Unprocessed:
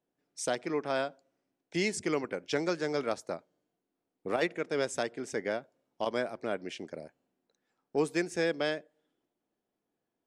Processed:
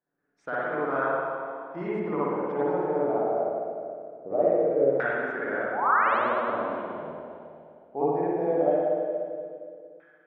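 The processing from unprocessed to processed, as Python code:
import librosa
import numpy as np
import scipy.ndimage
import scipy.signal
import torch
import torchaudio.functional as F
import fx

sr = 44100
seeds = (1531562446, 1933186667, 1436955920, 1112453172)

y = fx.spec_paint(x, sr, seeds[0], shape='rise', start_s=5.72, length_s=0.46, low_hz=690.0, high_hz=4400.0, level_db=-30.0)
y = fx.rev_spring(y, sr, rt60_s=2.5, pass_ms=(51, 58), chirp_ms=60, drr_db=-9.5)
y = fx.filter_lfo_lowpass(y, sr, shape='saw_down', hz=0.2, low_hz=540.0, high_hz=1600.0, q=4.1)
y = y * librosa.db_to_amplitude(-7.5)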